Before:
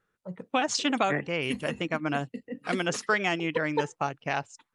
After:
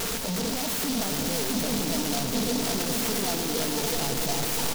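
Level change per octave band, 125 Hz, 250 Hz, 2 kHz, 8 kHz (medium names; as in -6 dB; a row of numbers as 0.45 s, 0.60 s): +3.0 dB, +3.0 dB, -5.0 dB, +11.5 dB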